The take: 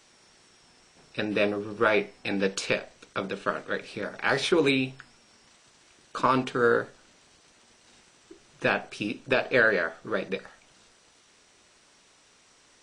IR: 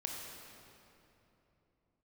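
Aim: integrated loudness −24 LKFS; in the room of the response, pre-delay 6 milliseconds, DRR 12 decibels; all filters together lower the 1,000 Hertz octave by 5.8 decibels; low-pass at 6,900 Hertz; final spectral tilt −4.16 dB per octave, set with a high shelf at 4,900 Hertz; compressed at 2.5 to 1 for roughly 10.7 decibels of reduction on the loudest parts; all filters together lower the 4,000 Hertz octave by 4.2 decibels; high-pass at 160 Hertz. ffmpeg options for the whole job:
-filter_complex "[0:a]highpass=160,lowpass=6900,equalizer=frequency=1000:width_type=o:gain=-8,equalizer=frequency=4000:width_type=o:gain=-7.5,highshelf=frequency=4900:gain=7.5,acompressor=threshold=-36dB:ratio=2.5,asplit=2[link_01][link_02];[1:a]atrim=start_sample=2205,adelay=6[link_03];[link_02][link_03]afir=irnorm=-1:irlink=0,volume=-12.5dB[link_04];[link_01][link_04]amix=inputs=2:normalize=0,volume=13.5dB"

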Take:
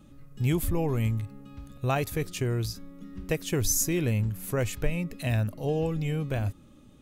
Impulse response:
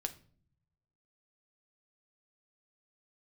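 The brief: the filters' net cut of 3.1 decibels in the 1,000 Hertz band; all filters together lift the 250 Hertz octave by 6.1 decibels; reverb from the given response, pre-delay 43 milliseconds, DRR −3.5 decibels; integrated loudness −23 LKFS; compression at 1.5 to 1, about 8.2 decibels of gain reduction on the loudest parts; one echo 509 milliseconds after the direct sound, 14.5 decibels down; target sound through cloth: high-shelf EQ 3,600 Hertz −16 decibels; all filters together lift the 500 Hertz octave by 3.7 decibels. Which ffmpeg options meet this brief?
-filter_complex "[0:a]equalizer=frequency=250:width_type=o:gain=8.5,equalizer=frequency=500:width_type=o:gain=3,equalizer=frequency=1000:width_type=o:gain=-5.5,acompressor=threshold=-41dB:ratio=1.5,aecho=1:1:509:0.188,asplit=2[link_01][link_02];[1:a]atrim=start_sample=2205,adelay=43[link_03];[link_02][link_03]afir=irnorm=-1:irlink=0,volume=4dB[link_04];[link_01][link_04]amix=inputs=2:normalize=0,highshelf=frequency=3600:gain=-16,volume=5.5dB"

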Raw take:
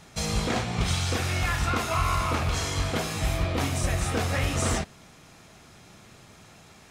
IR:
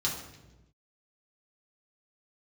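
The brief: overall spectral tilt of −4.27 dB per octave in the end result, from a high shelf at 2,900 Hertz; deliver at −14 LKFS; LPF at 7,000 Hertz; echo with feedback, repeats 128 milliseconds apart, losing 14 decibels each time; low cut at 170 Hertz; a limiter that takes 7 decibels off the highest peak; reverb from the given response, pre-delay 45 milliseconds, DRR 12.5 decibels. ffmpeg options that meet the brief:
-filter_complex "[0:a]highpass=170,lowpass=7000,highshelf=frequency=2900:gain=-5,alimiter=limit=-21.5dB:level=0:latency=1,aecho=1:1:128|256:0.2|0.0399,asplit=2[link_01][link_02];[1:a]atrim=start_sample=2205,adelay=45[link_03];[link_02][link_03]afir=irnorm=-1:irlink=0,volume=-18.5dB[link_04];[link_01][link_04]amix=inputs=2:normalize=0,volume=17dB"

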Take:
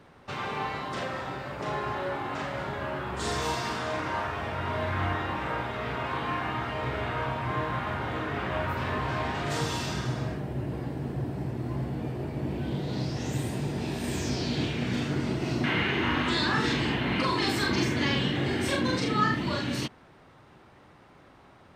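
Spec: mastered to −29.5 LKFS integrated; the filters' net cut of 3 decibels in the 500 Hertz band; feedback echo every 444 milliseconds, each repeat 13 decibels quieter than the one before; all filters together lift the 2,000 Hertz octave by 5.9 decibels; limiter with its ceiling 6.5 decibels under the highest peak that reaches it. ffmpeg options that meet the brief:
ffmpeg -i in.wav -af "equalizer=frequency=500:width_type=o:gain=-4.5,equalizer=frequency=2000:width_type=o:gain=7.5,alimiter=limit=-17dB:level=0:latency=1,aecho=1:1:444|888|1332:0.224|0.0493|0.0108,volume=-1dB" out.wav

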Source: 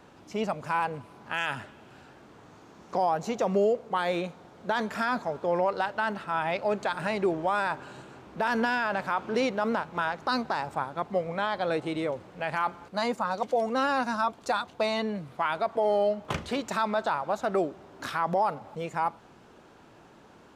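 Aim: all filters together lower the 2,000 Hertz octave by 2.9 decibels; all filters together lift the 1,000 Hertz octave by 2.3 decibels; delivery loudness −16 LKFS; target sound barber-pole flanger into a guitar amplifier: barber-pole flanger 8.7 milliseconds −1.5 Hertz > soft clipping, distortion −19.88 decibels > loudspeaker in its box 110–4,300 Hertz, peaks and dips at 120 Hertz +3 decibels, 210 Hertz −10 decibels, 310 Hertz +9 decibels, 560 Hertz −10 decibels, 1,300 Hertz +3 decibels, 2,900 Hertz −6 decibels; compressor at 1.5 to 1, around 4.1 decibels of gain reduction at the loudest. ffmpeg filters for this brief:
ffmpeg -i in.wav -filter_complex "[0:a]equalizer=frequency=1000:width_type=o:gain=5,equalizer=frequency=2000:width_type=o:gain=-8,acompressor=threshold=-31dB:ratio=1.5,asplit=2[link_01][link_02];[link_02]adelay=8.7,afreqshift=-1.5[link_03];[link_01][link_03]amix=inputs=2:normalize=1,asoftclip=threshold=-23.5dB,highpass=110,equalizer=frequency=120:width_type=q:width=4:gain=3,equalizer=frequency=210:width_type=q:width=4:gain=-10,equalizer=frequency=310:width_type=q:width=4:gain=9,equalizer=frequency=560:width_type=q:width=4:gain=-10,equalizer=frequency=1300:width_type=q:width=4:gain=3,equalizer=frequency=2900:width_type=q:width=4:gain=-6,lowpass=frequency=4300:width=0.5412,lowpass=frequency=4300:width=1.3066,volume=20.5dB" out.wav

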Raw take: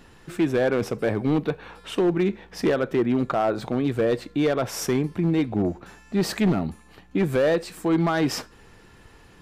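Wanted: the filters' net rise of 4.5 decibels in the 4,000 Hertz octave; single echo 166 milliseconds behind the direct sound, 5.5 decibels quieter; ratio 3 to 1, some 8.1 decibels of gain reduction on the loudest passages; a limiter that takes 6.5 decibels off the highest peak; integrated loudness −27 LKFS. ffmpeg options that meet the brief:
ffmpeg -i in.wav -af "equalizer=frequency=4000:width_type=o:gain=6,acompressor=threshold=-29dB:ratio=3,alimiter=limit=-24dB:level=0:latency=1,aecho=1:1:166:0.531,volume=5.5dB" out.wav

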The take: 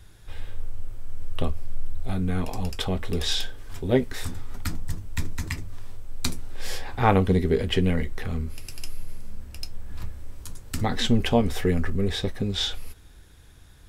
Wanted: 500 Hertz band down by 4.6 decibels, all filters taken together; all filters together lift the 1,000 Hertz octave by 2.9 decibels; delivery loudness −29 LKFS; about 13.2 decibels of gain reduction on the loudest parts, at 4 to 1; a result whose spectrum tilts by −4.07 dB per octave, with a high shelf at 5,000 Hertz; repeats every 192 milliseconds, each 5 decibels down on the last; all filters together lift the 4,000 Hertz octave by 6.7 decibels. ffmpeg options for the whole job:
ffmpeg -i in.wav -af "equalizer=frequency=500:width_type=o:gain=-7.5,equalizer=frequency=1000:width_type=o:gain=6.5,equalizer=frequency=4000:width_type=o:gain=6.5,highshelf=frequency=5000:gain=3,acompressor=threshold=-32dB:ratio=4,aecho=1:1:192|384|576|768|960|1152|1344:0.562|0.315|0.176|0.0988|0.0553|0.031|0.0173,volume=7dB" out.wav

